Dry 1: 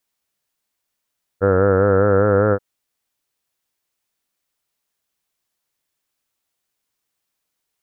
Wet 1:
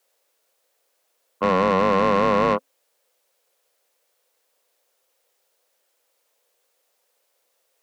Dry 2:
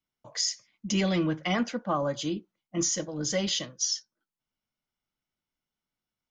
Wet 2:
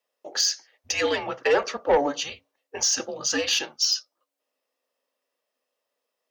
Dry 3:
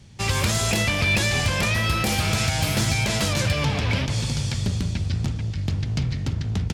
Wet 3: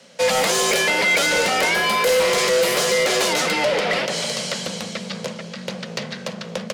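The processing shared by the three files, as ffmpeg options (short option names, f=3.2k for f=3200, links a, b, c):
-af "afreqshift=-280,highpass=f=510:t=q:w=4.9,asoftclip=type=tanh:threshold=-20dB,volume=7dB"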